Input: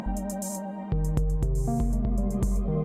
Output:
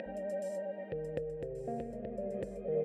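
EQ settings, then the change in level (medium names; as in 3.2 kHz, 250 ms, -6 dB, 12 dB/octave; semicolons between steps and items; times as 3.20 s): vowel filter e; band-stop 6.5 kHz, Q 6; +8.0 dB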